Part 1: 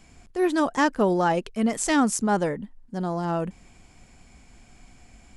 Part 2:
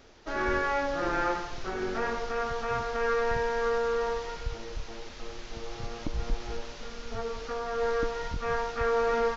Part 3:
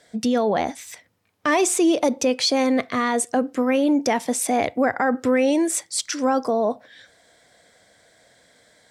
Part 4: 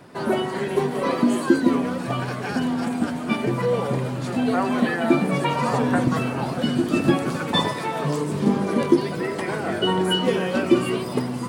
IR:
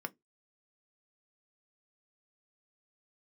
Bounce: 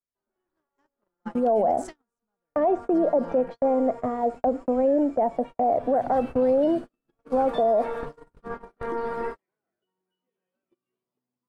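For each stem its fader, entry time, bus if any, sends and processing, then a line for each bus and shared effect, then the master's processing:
-7.5 dB, 0.00 s, send -20.5 dB, de-esser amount 50%; band-stop 450 Hz, Q 12; compression 2.5:1, threshold -35 dBFS, peak gain reduction 12.5 dB
6.66 s -11.5 dB -> 7.36 s -2.5 dB, 0.00 s, send -17 dB, one-sided wavefolder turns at -29 dBFS; low-pass 1.5 kHz 24 dB/octave
0.0 dB, 1.10 s, no send, compression 2.5:1, threshold -23 dBFS, peak gain reduction 6 dB; resonant low-pass 670 Hz, resonance Q 4; three bands expanded up and down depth 100%
-13.5 dB, 0.00 s, send -20.5 dB, tone controls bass -3 dB, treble -4 dB; compression 5:1, threshold -22 dBFS, peak gain reduction 10 dB; auto duck -13 dB, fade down 1.45 s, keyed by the first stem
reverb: on, RT60 0.15 s, pre-delay 3 ms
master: gate -30 dBFS, range -46 dB; peak limiter -14.5 dBFS, peak gain reduction 10 dB

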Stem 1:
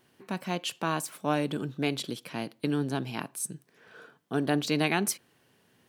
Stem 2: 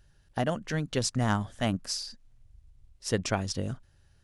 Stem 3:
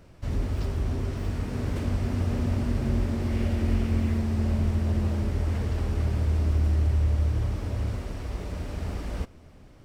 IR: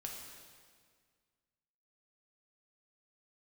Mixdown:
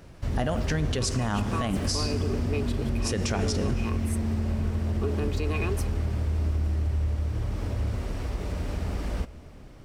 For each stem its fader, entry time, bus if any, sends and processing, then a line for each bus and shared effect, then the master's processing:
-7.5 dB, 0.70 s, no send, small resonant body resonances 410/1100/2500 Hz, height 18 dB; compression, threshold -21 dBFS, peak gain reduction 8.5 dB
+3.0 dB, 0.00 s, send -5.5 dB, none
+2.5 dB, 0.00 s, send -12.5 dB, compression 2.5:1, threshold -30 dBFS, peak gain reduction 7.5 dB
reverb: on, RT60 1.8 s, pre-delay 3 ms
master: peak limiter -17 dBFS, peak gain reduction 9.5 dB

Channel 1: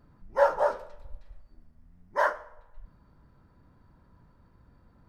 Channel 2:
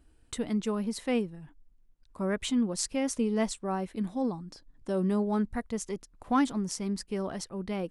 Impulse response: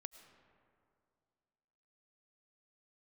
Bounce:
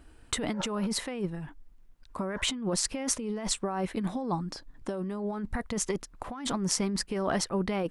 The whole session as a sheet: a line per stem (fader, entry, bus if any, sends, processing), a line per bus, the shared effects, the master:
-15.0 dB, 0.15 s, no send, auto duck -17 dB, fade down 1.20 s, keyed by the second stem
+2.0 dB, 0.00 s, no send, none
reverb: none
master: peaking EQ 1.3 kHz +6 dB 2.8 oct; compressor with a negative ratio -31 dBFS, ratio -1

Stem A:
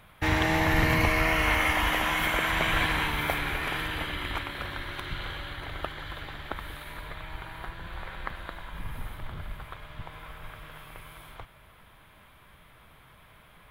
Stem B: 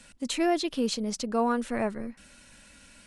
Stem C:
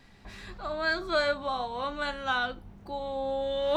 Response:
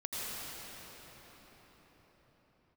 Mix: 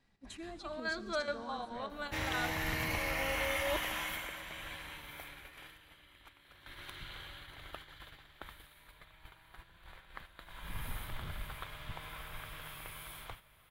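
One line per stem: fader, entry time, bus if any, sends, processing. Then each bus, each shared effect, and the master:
4.02 s -14.5 dB -> 4.42 s -23.5 dB -> 6.36 s -23.5 dB -> 6.81 s -15 dB -> 10.34 s -15 dB -> 10.78 s -5 dB, 1.90 s, send -23 dB, treble shelf 2.7 kHz +10.5 dB
-16.0 dB, 0.00 s, send -12.5 dB, expander on every frequency bin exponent 2; peak limiter -24 dBFS, peak gain reduction 8 dB
-9.5 dB, 0.00 s, send -19.5 dB, square tremolo 4.7 Hz, depth 60%, duty 75%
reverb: on, pre-delay 77 ms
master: gate -50 dBFS, range -8 dB

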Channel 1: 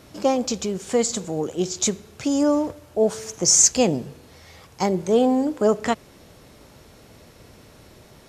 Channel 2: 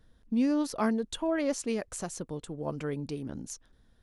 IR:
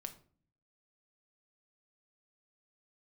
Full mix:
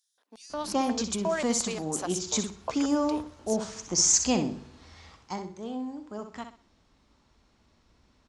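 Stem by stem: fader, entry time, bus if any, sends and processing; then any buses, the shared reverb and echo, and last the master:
5.06 s -7 dB -> 5.53 s -19 dB, 0.50 s, no send, echo send -8.5 dB, low-pass 7.6 kHz 24 dB/octave; bass shelf 140 Hz +10.5 dB
+1.0 dB, 0.00 s, send -22.5 dB, no echo send, high-pass 250 Hz; bass shelf 390 Hz -9 dB; LFO high-pass square 2.8 Hz 520–6600 Hz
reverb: on, RT60 0.45 s, pre-delay 5 ms
echo: feedback delay 63 ms, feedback 29%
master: ten-band graphic EQ 125 Hz -10 dB, 250 Hz +4 dB, 500 Hz -7 dB, 1 kHz +6 dB, 4 kHz +3 dB

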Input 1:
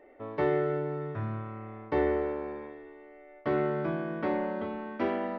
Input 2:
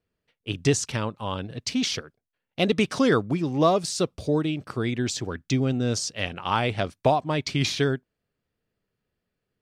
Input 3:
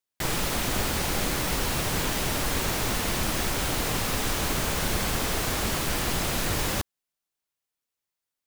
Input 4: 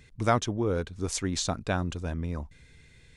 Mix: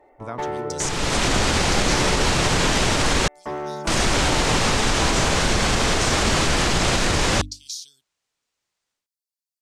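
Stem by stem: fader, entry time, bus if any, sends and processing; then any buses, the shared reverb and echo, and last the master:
-2.5 dB, 0.00 s, no send, peaking EQ 880 Hz +13 dB 0.58 oct; one-sided clip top -24 dBFS
+2.0 dB, 0.05 s, no send, inverse Chebyshev high-pass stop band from 2 kHz, stop band 50 dB
-0.5 dB, 0.60 s, muted 3.28–3.87 s, no send, low-pass 8 kHz 24 dB/octave; hum notches 50/100/150/200/250/300 Hz; level rider gain up to 11 dB
-3.5 dB, 0.00 s, no send, compression 3:1, threshold -31 dBFS, peak gain reduction 10 dB; three bands expanded up and down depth 70%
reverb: none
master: peak limiter -9.5 dBFS, peak gain reduction 4.5 dB

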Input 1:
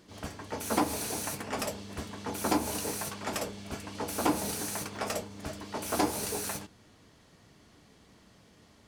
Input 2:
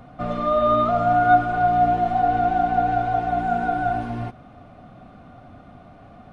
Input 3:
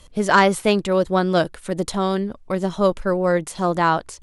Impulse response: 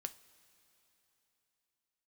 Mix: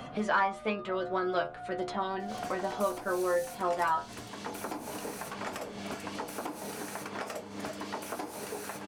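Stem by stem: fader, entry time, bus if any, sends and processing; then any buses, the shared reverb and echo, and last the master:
-0.5 dB, 2.20 s, no send, high-pass 270 Hz 6 dB/octave; compression 6:1, threshold -42 dBFS, peak gain reduction 17.5 dB
-15.5 dB, 0.00 s, no send, compression 2:1, threshold -36 dBFS, peak gain reduction 14 dB
+2.5 dB, 0.00 s, no send, low-pass 1.5 kHz 12 dB/octave; tilt EQ +4 dB/octave; inharmonic resonator 71 Hz, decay 0.32 s, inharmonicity 0.002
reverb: none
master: short-mantissa float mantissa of 8-bit; three bands compressed up and down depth 70%

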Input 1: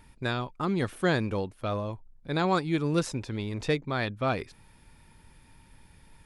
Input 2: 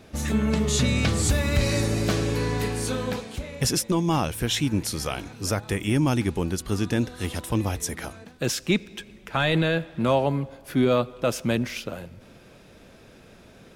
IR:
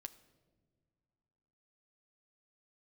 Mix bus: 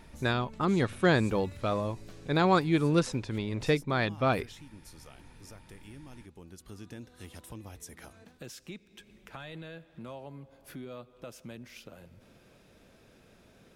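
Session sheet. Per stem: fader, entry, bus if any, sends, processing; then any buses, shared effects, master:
+0.5 dB, 0.00 s, no send, treble shelf 10 kHz -10 dB; hum notches 50/100 Hz
-9.5 dB, 0.00 s, no send, treble shelf 11 kHz +4 dB; compression 2.5:1, threshold -38 dBFS, peak gain reduction 14 dB; auto duck -6 dB, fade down 0.30 s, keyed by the first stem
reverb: none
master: gain riding 2 s

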